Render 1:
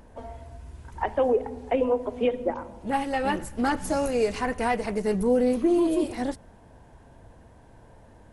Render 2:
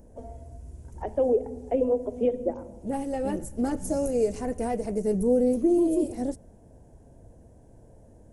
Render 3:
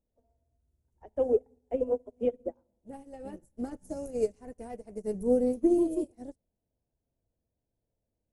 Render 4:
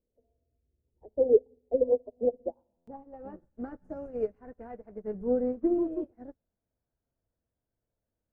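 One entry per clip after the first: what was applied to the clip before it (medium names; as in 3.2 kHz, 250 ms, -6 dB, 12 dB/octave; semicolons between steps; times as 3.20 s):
high-order bell 2 kHz -15 dB 2.7 oct
upward expansion 2.5:1, over -40 dBFS
low-pass sweep 470 Hz -> 1.5 kHz, 1.59–3.61 s; buffer glitch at 2.77 s, samples 512, times 8; trim -3 dB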